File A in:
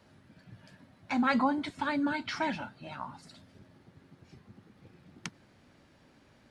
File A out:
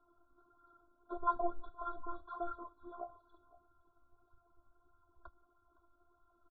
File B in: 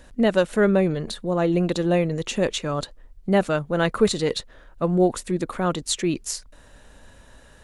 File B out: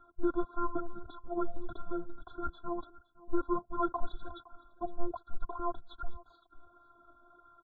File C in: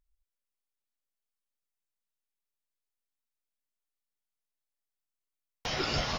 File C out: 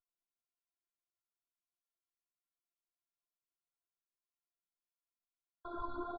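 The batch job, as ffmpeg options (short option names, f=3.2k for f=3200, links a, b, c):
-filter_complex "[0:a]afftfilt=real='hypot(re,im)*cos(PI*b)':imag='0':win_size=512:overlap=0.75,flanger=delay=0.5:depth=2.9:regen=24:speed=1.6:shape=sinusoidal,asoftclip=type=tanh:threshold=-19dB,asubboost=boost=8:cutoff=170,asplit=2[a][b];[b]aecho=0:1:513:0.0944[c];[a][c]amix=inputs=2:normalize=0,highpass=f=330:t=q:w=0.5412,highpass=f=330:t=q:w=1.307,lowpass=f=2.6k:t=q:w=0.5176,lowpass=f=2.6k:t=q:w=0.7071,lowpass=f=2.6k:t=q:w=1.932,afreqshift=-340,afftfilt=real='re*eq(mod(floor(b*sr/1024/1600),2),0)':imag='im*eq(mod(floor(b*sr/1024/1600),2),0)':win_size=1024:overlap=0.75,volume=3dB"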